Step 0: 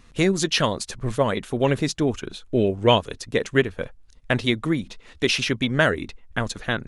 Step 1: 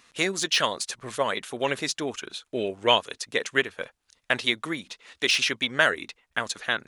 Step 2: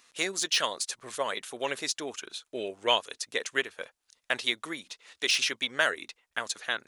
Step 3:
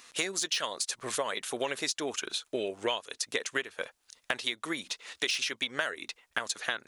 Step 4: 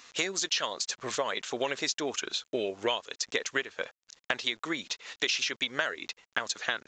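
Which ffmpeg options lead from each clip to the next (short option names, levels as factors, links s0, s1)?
-af "highpass=f=1200:p=1,deesser=0.5,volume=1.33"
-af "bass=f=250:g=-9,treble=f=4000:g=5,volume=0.562"
-af "acompressor=threshold=0.0158:ratio=6,volume=2.37"
-af "acrusher=bits=9:mix=0:aa=0.000001,aresample=16000,aresample=44100,volume=1.19"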